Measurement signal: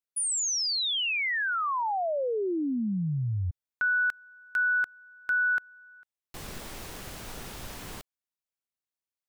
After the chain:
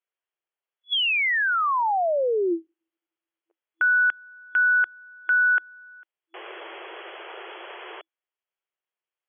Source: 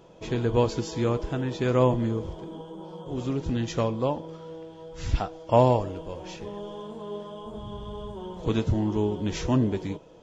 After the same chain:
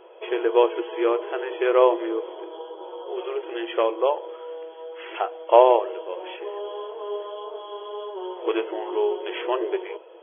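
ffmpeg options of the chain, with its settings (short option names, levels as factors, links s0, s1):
-af "afftfilt=real='re*between(b*sr/4096,330,3400)':imag='im*between(b*sr/4096,330,3400)':win_size=4096:overlap=0.75,volume=2"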